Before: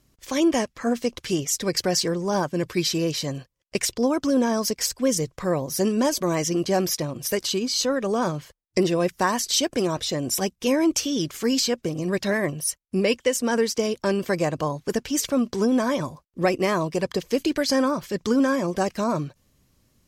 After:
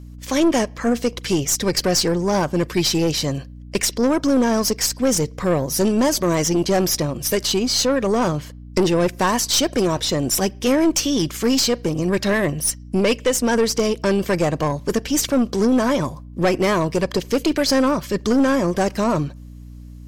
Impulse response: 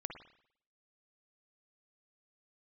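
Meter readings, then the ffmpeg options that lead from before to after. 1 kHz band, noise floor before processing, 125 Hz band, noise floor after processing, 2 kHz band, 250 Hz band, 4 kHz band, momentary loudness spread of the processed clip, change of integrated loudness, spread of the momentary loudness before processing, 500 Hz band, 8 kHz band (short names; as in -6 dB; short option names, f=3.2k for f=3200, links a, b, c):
+4.0 dB, -68 dBFS, +6.0 dB, -38 dBFS, +4.0 dB, +4.5 dB, +4.5 dB, 5 LU, +4.5 dB, 5 LU, +4.0 dB, +5.0 dB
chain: -filter_complex "[0:a]asplit=2[a][b];[1:a]atrim=start_sample=2205,asetrate=61740,aresample=44100[c];[b][c]afir=irnorm=-1:irlink=0,volume=-16.5dB[d];[a][d]amix=inputs=2:normalize=0,aeval=exprs='val(0)+0.00794*(sin(2*PI*60*n/s)+sin(2*PI*2*60*n/s)/2+sin(2*PI*3*60*n/s)/3+sin(2*PI*4*60*n/s)/4+sin(2*PI*5*60*n/s)/5)':c=same,aeval=exprs='(tanh(7.94*val(0)+0.3)-tanh(0.3))/7.94':c=same,volume=6.5dB"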